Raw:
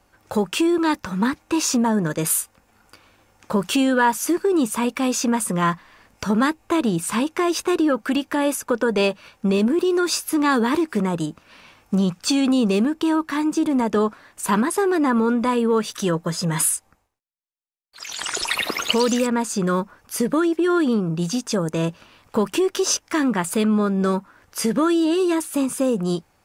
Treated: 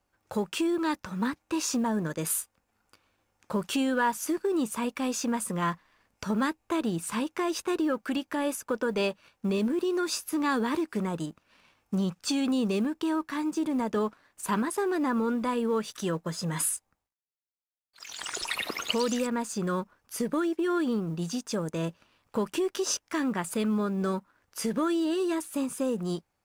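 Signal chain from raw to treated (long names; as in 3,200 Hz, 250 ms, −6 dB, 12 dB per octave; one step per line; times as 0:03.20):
mu-law and A-law mismatch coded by A
level −8 dB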